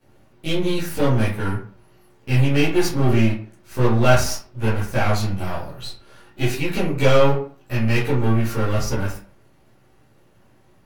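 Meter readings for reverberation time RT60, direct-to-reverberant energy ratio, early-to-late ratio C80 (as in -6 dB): 0.45 s, -11.5 dB, 10.5 dB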